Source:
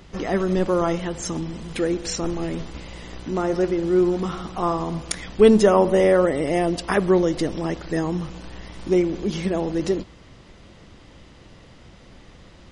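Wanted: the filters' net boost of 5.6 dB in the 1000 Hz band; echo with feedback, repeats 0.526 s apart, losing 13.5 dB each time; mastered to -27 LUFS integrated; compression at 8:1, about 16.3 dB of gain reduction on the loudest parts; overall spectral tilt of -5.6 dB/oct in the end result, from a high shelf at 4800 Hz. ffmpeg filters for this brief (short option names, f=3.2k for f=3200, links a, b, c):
-af "equalizer=f=1k:t=o:g=7.5,highshelf=f=4.8k:g=-5.5,acompressor=threshold=-26dB:ratio=8,aecho=1:1:526|1052:0.211|0.0444,volume=4dB"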